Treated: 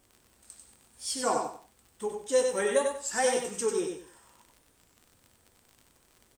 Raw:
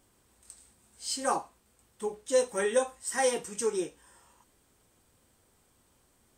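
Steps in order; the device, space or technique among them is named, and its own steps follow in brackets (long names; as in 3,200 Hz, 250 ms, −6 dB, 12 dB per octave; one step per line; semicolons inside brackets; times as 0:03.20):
warped LP (wow of a warped record 33 1/3 rpm, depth 160 cents; surface crackle 36 per second −42 dBFS; white noise bed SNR 44 dB)
repeating echo 95 ms, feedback 25%, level −5 dB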